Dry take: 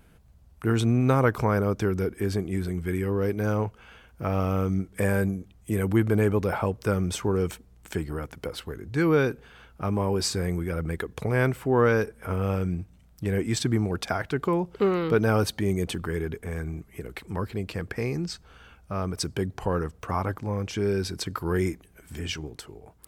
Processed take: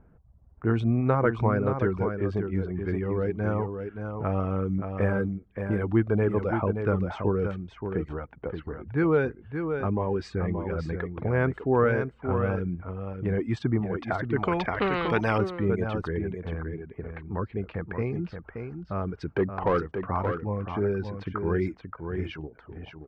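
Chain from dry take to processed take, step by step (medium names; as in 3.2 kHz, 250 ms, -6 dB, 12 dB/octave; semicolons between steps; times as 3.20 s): reverb removal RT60 0.73 s; level-controlled noise filter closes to 1.2 kHz, open at -22 dBFS; low-pass 1.8 kHz 12 dB/octave; 19.31–19.80 s: overdrive pedal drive 19 dB, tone 1.2 kHz, clips at -12 dBFS; on a send: delay 575 ms -7 dB; 14.36–15.38 s: on the sum: spectrum-flattening compressor 2:1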